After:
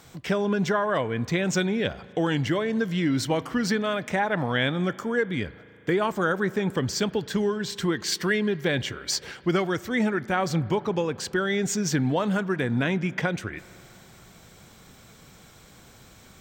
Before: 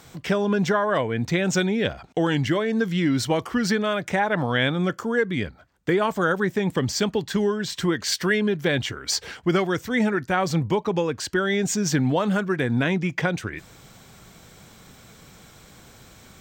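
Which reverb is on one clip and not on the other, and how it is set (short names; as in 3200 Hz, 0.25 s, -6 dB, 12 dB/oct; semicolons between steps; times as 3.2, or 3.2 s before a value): spring tank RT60 3.1 s, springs 37 ms, chirp 45 ms, DRR 18.5 dB; gain -2.5 dB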